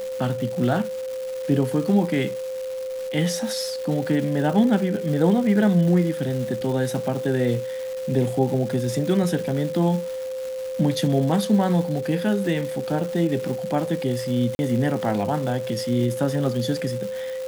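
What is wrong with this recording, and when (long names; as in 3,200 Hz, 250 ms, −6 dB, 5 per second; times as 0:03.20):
surface crackle 580 per second −31 dBFS
whistle 520 Hz −27 dBFS
0:14.55–0:14.59: drop-out 41 ms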